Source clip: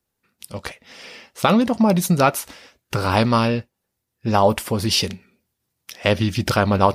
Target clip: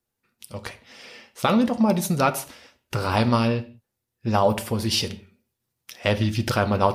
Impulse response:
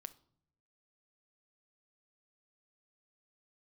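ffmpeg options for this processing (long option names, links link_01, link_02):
-filter_complex "[1:a]atrim=start_sample=2205,atrim=end_sample=6615,asetrate=33957,aresample=44100[link_01];[0:a][link_01]afir=irnorm=-1:irlink=0"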